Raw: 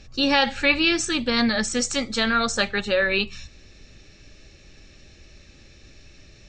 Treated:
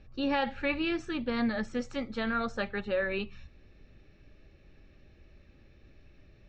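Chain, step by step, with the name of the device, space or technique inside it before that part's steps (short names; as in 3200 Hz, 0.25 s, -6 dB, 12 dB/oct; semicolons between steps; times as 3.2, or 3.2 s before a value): phone in a pocket (LPF 3500 Hz 12 dB/oct; high shelf 2300 Hz -11 dB); gain -7 dB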